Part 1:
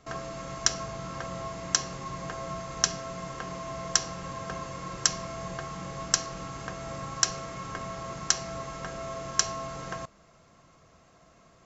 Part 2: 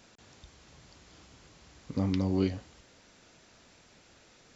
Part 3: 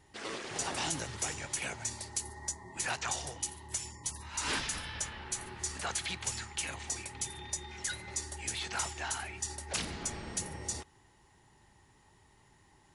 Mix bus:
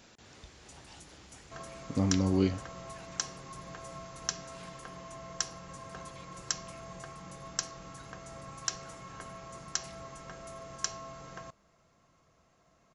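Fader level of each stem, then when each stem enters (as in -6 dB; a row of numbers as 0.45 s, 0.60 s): -9.0 dB, +1.0 dB, -20.0 dB; 1.45 s, 0.00 s, 0.10 s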